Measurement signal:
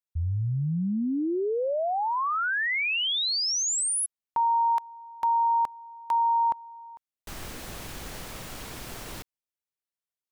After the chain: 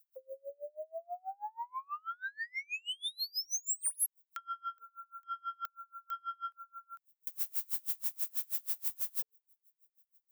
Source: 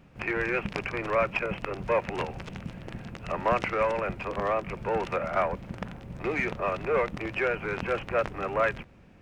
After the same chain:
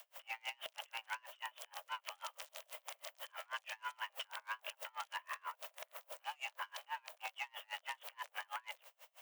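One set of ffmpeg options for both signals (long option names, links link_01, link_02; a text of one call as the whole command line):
ffmpeg -i in.wav -filter_complex "[0:a]acrossover=split=320[link_01][link_02];[link_02]alimiter=limit=-20.5dB:level=0:latency=1:release=96[link_03];[link_01][link_03]amix=inputs=2:normalize=0,aemphasis=mode=production:type=riaa,asoftclip=type=tanh:threshold=-20.5dB,afreqshift=440,acompressor=threshold=-34dB:ratio=6:attack=0.4:release=105:knee=6:detection=rms,highshelf=frequency=6200:gain=9,aeval=exprs='val(0)*pow(10,-34*(0.5-0.5*cos(2*PI*6.2*n/s))/20)':channel_layout=same" out.wav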